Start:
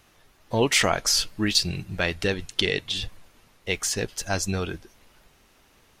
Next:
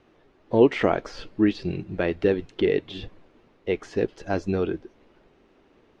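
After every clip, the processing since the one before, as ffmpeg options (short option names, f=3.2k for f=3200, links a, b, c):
-filter_complex "[0:a]acrossover=split=2600[a][b];[b]acompressor=threshold=-30dB:ratio=4:attack=1:release=60[c];[a][c]amix=inputs=2:normalize=0,lowpass=3.3k,equalizer=f=350:t=o:w=1.8:g=14,volume=-5.5dB"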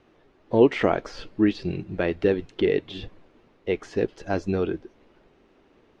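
-af anull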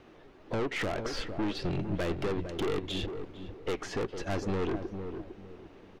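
-filter_complex "[0:a]acompressor=threshold=-24dB:ratio=6,aeval=exprs='(tanh(50.1*val(0)+0.35)-tanh(0.35))/50.1':c=same,asplit=2[a][b];[b]adelay=455,lowpass=f=860:p=1,volume=-7dB,asplit=2[c][d];[d]adelay=455,lowpass=f=860:p=1,volume=0.32,asplit=2[e][f];[f]adelay=455,lowpass=f=860:p=1,volume=0.32,asplit=2[g][h];[h]adelay=455,lowpass=f=860:p=1,volume=0.32[i];[a][c][e][g][i]amix=inputs=5:normalize=0,volume=5.5dB"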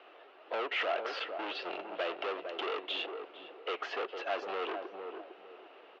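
-af "asoftclip=type=hard:threshold=-31dB,highpass=f=430:w=0.5412,highpass=f=430:w=1.3066,equalizer=f=690:t=q:w=4:g=6,equalizer=f=1.3k:t=q:w=4:g=6,equalizer=f=2.8k:t=q:w=4:g=8,lowpass=f=4.1k:w=0.5412,lowpass=f=4.1k:w=1.3066"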